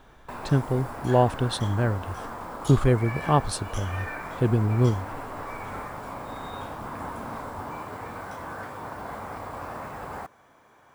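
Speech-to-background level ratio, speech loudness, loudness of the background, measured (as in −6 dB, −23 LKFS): 11.5 dB, −25.0 LKFS, −36.5 LKFS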